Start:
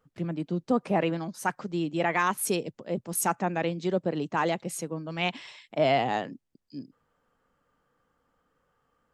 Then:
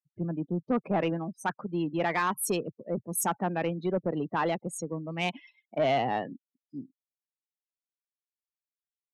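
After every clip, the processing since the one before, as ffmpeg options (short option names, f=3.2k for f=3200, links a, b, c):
-af "afftfilt=real='re*gte(hypot(re,im),0.00562)':imag='im*gte(hypot(re,im),0.00562)':win_size=1024:overlap=0.75,afftdn=nr=25:nf=-38,asoftclip=type=tanh:threshold=-18.5dB"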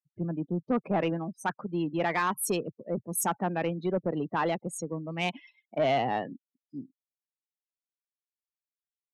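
-af anull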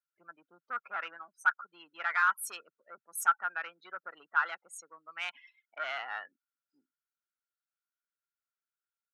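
-af "highpass=f=1.4k:t=q:w=15,volume=-7.5dB"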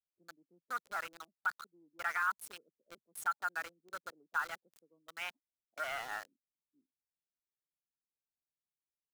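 -filter_complex "[0:a]highshelf=f=2.5k:g=-8.5,alimiter=limit=-23.5dB:level=0:latency=1:release=144,acrossover=split=440[a][b];[b]aeval=exprs='val(0)*gte(abs(val(0)),0.00631)':c=same[c];[a][c]amix=inputs=2:normalize=0"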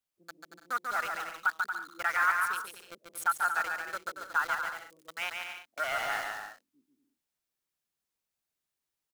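-af "aecho=1:1:140|231|290.2|328.6|353.6:0.631|0.398|0.251|0.158|0.1,volume=6dB"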